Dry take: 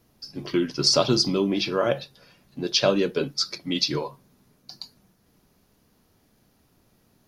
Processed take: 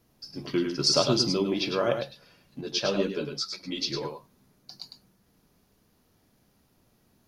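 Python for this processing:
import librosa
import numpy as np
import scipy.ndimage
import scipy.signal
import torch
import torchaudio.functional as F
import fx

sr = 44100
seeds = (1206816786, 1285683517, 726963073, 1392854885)

p1 = x + fx.echo_single(x, sr, ms=104, db=-6.5, dry=0)
p2 = fx.ensemble(p1, sr, at=(2.61, 4.03))
y = p2 * 10.0 ** (-3.5 / 20.0)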